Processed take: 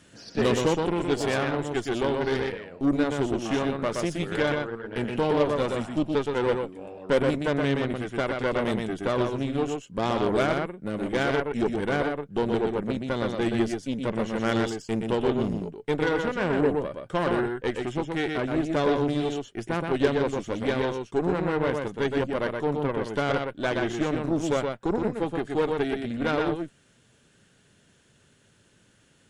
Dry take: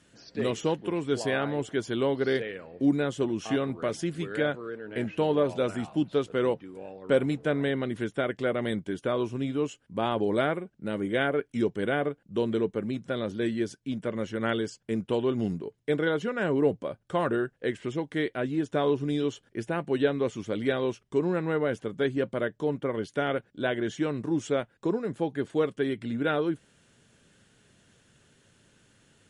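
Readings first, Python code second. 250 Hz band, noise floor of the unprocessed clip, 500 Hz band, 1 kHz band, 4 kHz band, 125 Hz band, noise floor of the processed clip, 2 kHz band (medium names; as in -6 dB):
+2.0 dB, -67 dBFS, +2.0 dB, +4.5 dB, +3.5 dB, +3.0 dB, -61 dBFS, +2.5 dB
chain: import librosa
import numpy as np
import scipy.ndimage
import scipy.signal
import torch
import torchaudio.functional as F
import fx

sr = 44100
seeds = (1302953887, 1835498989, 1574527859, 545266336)

y = x + 10.0 ** (-4.0 / 20.0) * np.pad(x, (int(122 * sr / 1000.0), 0))[:len(x)]
y = fx.rider(y, sr, range_db=10, speed_s=2.0)
y = fx.cheby_harmonics(y, sr, harmonics=(8,), levels_db=(-20,), full_scale_db=-10.0)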